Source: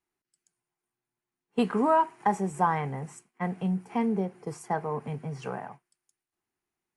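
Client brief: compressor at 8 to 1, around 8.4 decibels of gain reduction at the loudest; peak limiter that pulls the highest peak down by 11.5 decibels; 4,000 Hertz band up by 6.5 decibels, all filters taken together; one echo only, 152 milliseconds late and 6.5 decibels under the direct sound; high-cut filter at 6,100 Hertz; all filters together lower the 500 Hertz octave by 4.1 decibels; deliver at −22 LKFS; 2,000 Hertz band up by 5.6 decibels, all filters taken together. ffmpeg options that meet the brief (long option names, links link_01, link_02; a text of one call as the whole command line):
ffmpeg -i in.wav -af "lowpass=6100,equalizer=frequency=500:width_type=o:gain=-6,equalizer=frequency=2000:width_type=o:gain=6,equalizer=frequency=4000:width_type=o:gain=7,acompressor=threshold=-27dB:ratio=8,alimiter=level_in=1.5dB:limit=-24dB:level=0:latency=1,volume=-1.5dB,aecho=1:1:152:0.473,volume=13.5dB" out.wav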